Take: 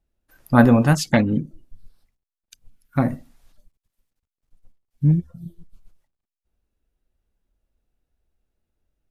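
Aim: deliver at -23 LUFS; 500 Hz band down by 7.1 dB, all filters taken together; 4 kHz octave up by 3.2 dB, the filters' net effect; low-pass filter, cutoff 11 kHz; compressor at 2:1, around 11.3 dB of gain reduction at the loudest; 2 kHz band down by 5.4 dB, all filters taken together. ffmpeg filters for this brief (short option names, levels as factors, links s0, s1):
-af "lowpass=11000,equalizer=f=500:t=o:g=-8.5,equalizer=f=2000:t=o:g=-8,equalizer=f=4000:t=o:g=6,acompressor=threshold=0.0251:ratio=2,volume=2.51"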